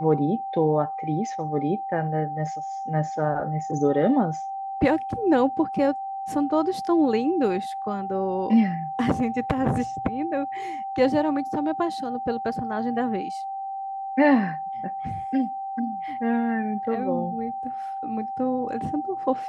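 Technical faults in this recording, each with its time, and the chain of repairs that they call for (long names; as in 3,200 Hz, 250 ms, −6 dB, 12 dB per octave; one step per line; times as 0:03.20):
whistle 780 Hz −29 dBFS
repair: notch filter 780 Hz, Q 30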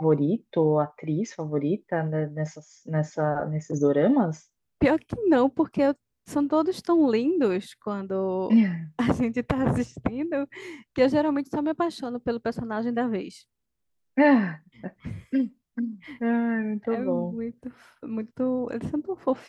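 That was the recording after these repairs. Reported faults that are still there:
none of them is left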